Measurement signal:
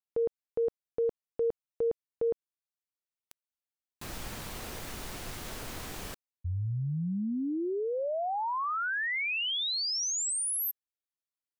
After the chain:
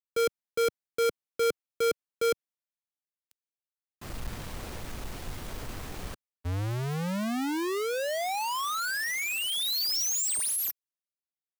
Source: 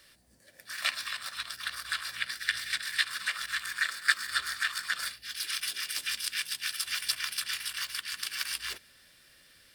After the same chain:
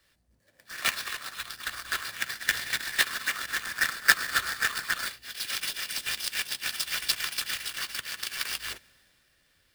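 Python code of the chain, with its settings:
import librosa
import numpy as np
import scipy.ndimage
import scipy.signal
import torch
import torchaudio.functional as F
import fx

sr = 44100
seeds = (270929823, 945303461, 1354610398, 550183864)

y = fx.halfwave_hold(x, sr)
y = fx.band_widen(y, sr, depth_pct=40)
y = F.gain(torch.from_numpy(y), -1.5).numpy()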